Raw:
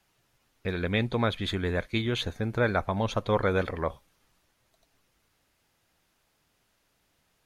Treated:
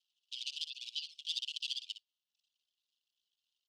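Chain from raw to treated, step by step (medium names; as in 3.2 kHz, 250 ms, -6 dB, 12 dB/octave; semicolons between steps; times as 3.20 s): dead-time distortion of 0.26 ms; reverb removal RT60 1.4 s; steep high-pass 2.1 kHz 96 dB/octave; treble shelf 3.7 kHz -8.5 dB; tempo 1.5×; distance through air 220 m; delay 81 ms -11 dB; speed mistake 33 rpm record played at 45 rpm; trim +8.5 dB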